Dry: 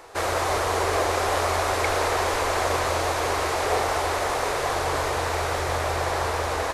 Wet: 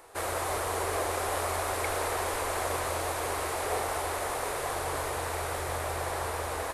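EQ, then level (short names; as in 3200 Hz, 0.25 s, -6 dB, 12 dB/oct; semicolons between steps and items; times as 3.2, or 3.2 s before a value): resonant high shelf 7600 Hz +7 dB, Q 1.5; -7.5 dB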